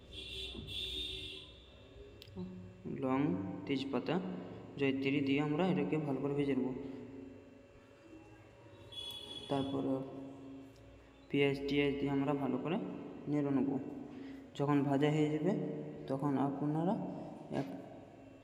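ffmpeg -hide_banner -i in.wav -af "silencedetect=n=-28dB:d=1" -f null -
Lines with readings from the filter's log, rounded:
silence_start: 0.00
silence_end: 3.03 | silence_duration: 3.03
silence_start: 6.66
silence_end: 9.51 | silence_duration: 2.85
silence_start: 9.96
silence_end: 11.34 | silence_duration: 1.39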